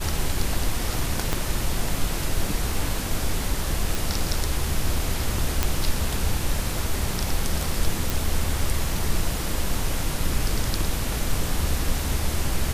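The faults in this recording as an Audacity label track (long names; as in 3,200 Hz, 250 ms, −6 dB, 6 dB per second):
1.330000	1.330000	click −8 dBFS
3.950000	3.950000	click
5.630000	5.630000	click −5 dBFS
8.100000	8.100000	click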